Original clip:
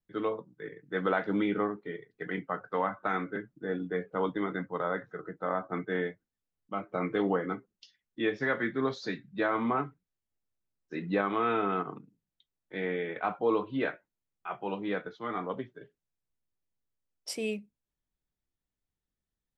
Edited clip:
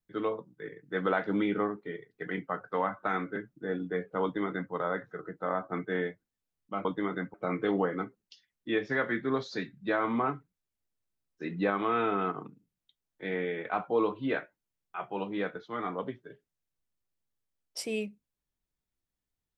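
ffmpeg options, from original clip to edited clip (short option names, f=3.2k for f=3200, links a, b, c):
-filter_complex "[0:a]asplit=3[a][b][c];[a]atrim=end=6.852[d];[b]atrim=start=4.228:end=4.722[e];[c]atrim=start=6.848[f];[d][e]acrossfade=d=0.004:c1=hsin:c2=hsin[g];[g][f]acrossfade=d=0.004:c1=hsin:c2=hsin"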